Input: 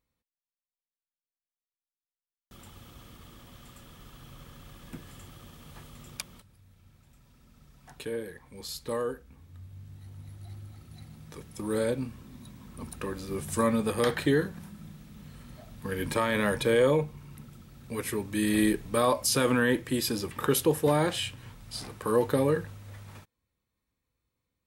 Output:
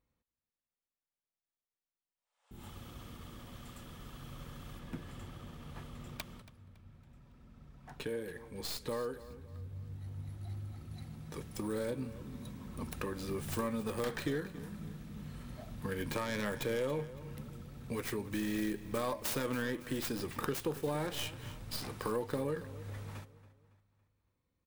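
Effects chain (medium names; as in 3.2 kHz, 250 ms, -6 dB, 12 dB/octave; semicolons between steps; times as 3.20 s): tracing distortion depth 0.41 ms; 2.17–2.63 s: spectral replace 470–10000 Hz both; 4.79–8.09 s: treble shelf 5 kHz -7.5 dB; compression 3:1, threshold -38 dBFS, peak gain reduction 14 dB; feedback delay 279 ms, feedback 44%, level -16 dB; tape noise reduction on one side only decoder only; trim +1.5 dB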